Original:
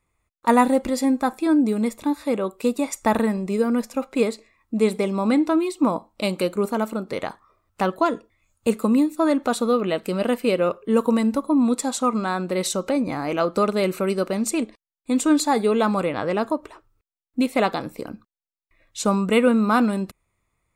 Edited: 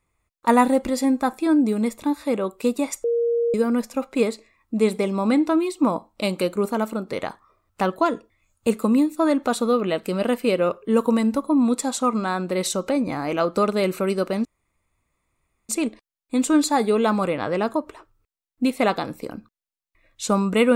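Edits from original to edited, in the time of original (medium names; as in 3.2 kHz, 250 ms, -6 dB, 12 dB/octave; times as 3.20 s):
3.04–3.54 s: bleep 469 Hz -18 dBFS
14.45 s: insert room tone 1.24 s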